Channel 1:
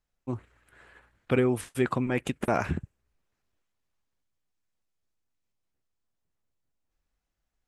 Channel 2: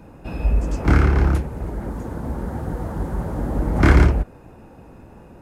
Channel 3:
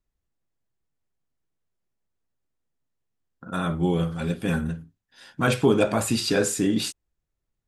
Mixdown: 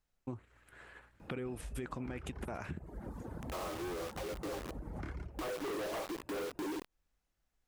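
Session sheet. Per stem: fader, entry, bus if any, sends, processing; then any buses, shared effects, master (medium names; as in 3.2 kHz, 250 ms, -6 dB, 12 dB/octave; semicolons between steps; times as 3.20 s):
0.0 dB, 0.00 s, no send, peak limiter -18 dBFS, peak gain reduction 7 dB
-10.5 dB, 1.20 s, no send, reverb removal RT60 1 s; compression 4:1, threshold -24 dBFS, peak gain reduction 13 dB
-4.0 dB, 0.00 s, no send, FFT band-pass 280–1300 Hz; saturation -24.5 dBFS, distortion -8 dB; companded quantiser 2-bit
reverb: none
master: compression 4:1, threshold -40 dBFS, peak gain reduction 14 dB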